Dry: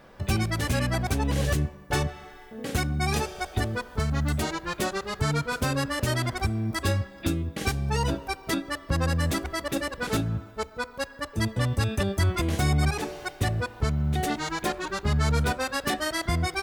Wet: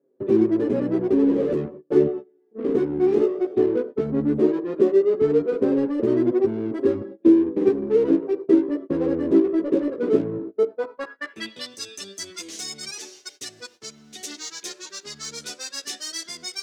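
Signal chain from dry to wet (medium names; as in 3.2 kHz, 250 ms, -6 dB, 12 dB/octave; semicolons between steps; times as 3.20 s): gate -38 dBFS, range -28 dB; high-pass 220 Hz 12 dB/octave; resonant low shelf 550 Hz +11 dB, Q 1.5; band-pass sweep 400 Hz -> 6 kHz, 10.58–11.78 s; in parallel at -4 dB: saturation -38 dBFS, distortion -2 dB; on the sum: flange 0.15 Hz, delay 7.2 ms, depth 9.9 ms, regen -4%; trim +8 dB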